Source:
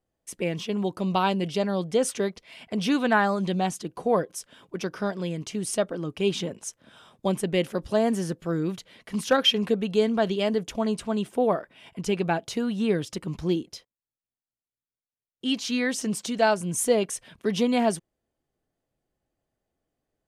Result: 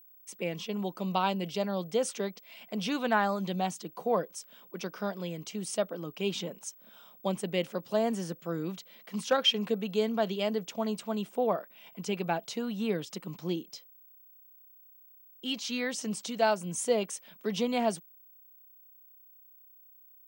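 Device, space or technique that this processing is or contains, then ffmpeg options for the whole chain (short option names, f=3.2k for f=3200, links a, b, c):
old television with a line whistle: -af "highpass=f=170:w=0.5412,highpass=f=170:w=1.3066,equalizer=f=270:t=q:w=4:g=-6,equalizer=f=380:t=q:w=4:g=-4,equalizer=f=1.7k:t=q:w=4:g=-4,lowpass=f=8.9k:w=0.5412,lowpass=f=8.9k:w=1.3066,aeval=exprs='val(0)+0.00316*sin(2*PI*15734*n/s)':c=same,volume=-4dB"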